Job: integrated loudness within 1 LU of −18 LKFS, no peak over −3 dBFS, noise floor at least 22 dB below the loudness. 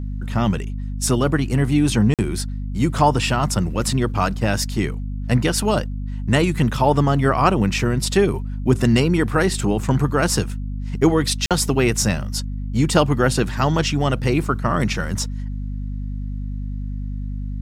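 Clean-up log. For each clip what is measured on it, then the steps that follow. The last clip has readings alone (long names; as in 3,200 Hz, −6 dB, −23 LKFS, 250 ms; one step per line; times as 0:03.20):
number of dropouts 2; longest dropout 47 ms; mains hum 50 Hz; hum harmonics up to 250 Hz; level of the hum −24 dBFS; integrated loudness −20.5 LKFS; sample peak −2.5 dBFS; target loudness −18.0 LKFS
→ repair the gap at 0:02.14/0:11.46, 47 ms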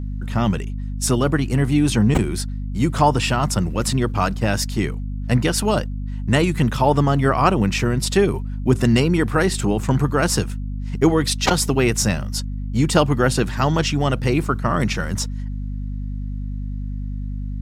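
number of dropouts 0; mains hum 50 Hz; hum harmonics up to 250 Hz; level of the hum −24 dBFS
→ mains-hum notches 50/100/150/200/250 Hz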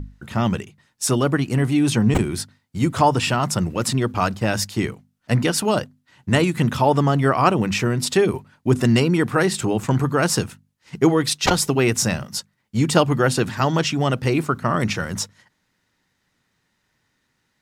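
mains hum none found; integrated loudness −20.5 LKFS; sample peak −2.5 dBFS; target loudness −18.0 LKFS
→ level +2.5 dB
brickwall limiter −3 dBFS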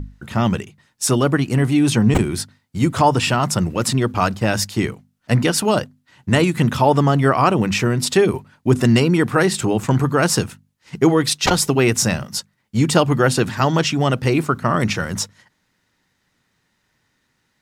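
integrated loudness −18.0 LKFS; sample peak −3.0 dBFS; background noise floor −69 dBFS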